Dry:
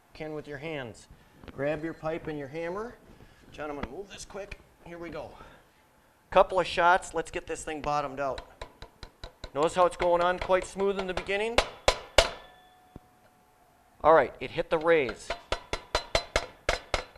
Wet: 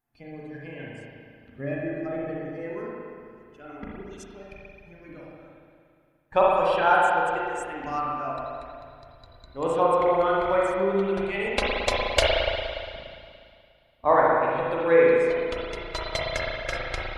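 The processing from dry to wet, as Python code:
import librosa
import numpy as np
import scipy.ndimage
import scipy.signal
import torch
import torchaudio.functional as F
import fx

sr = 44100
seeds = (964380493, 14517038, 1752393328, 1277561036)

y = fx.bin_expand(x, sr, power=1.5)
y = fx.rev_spring(y, sr, rt60_s=2.3, pass_ms=(36, 58), chirp_ms=60, drr_db=-5.5)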